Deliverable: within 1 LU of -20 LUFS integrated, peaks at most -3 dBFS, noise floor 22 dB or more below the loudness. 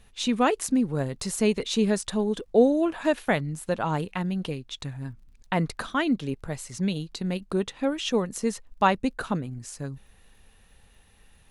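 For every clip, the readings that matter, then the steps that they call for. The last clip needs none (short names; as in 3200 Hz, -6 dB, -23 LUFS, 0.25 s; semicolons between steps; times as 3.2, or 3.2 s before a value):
ticks 22/s; loudness -27.0 LUFS; peak -8.0 dBFS; loudness target -20.0 LUFS
-> de-click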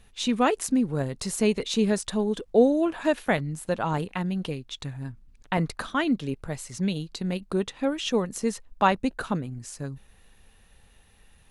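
ticks 0/s; loudness -27.0 LUFS; peak -8.0 dBFS; loudness target -20.0 LUFS
-> gain +7 dB; limiter -3 dBFS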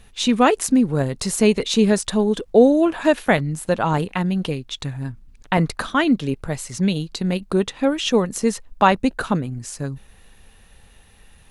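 loudness -20.0 LUFS; peak -3.0 dBFS; noise floor -51 dBFS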